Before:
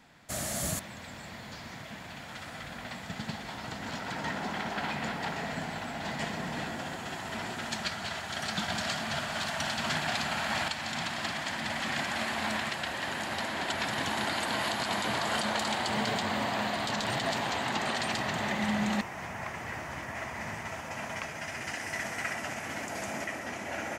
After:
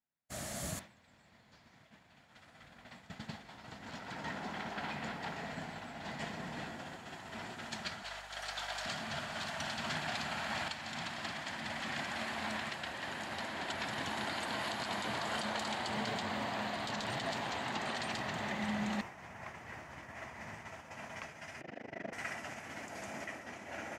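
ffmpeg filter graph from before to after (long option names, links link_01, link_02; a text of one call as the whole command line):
ffmpeg -i in.wav -filter_complex "[0:a]asettb=1/sr,asplit=3[link_01][link_02][link_03];[link_01]atrim=end=8.034[link_04];[link_02]atrim=start=8.03:end=8.86,asetpts=PTS-STARTPTS,afade=type=in:duration=0.004:curve=qsin,afade=type=out:start_time=0.826:duration=0.004:curve=qsin,highpass=frequency=480:width=0.5412,highpass=frequency=480:width=1.3066,highshelf=frequency=8900:gain=3,aeval=exprs='val(0)+0.00316*(sin(2*PI*50*n/s)+sin(2*PI*2*50*n/s)/2+sin(2*PI*3*50*n/s)/3+sin(2*PI*4*50*n/s)/4+sin(2*PI*5*50*n/s)/5)':channel_layout=same[link_05];[link_03]atrim=start=8.856[link_06];[link_04][link_05]acrossfade=duration=0.004:curve1=hsin:curve2=qsin[link_07];[link_07][link_06]acrossfade=duration=0.004:curve1=qsin:curve2=hsin,asettb=1/sr,asplit=3[link_08][link_09][link_10];[link_08]atrim=end=21.614[link_11];[link_09]atrim=start=21.61:end=22.13,asetpts=PTS-STARTPTS,afade=type=in:duration=0.004:curve=qsin,afade=type=out:start_time=0.516:duration=0.004:curve=qsin,lowshelf=frequency=730:width_type=q:width=1.5:gain=9.5,tremolo=f=25:d=0.947,highpass=170,lowpass=3000[link_12];[link_10]atrim=start=22.126[link_13];[link_11][link_12]acrossfade=duration=0.004:curve1=hsin:curve2=qsin[link_14];[link_14][link_13]acrossfade=duration=0.004:curve1=qsin:curve2=hsin,agate=range=-33dB:threshold=-34dB:ratio=3:detection=peak,highshelf=frequency=10000:gain=-7,volume=-6.5dB" out.wav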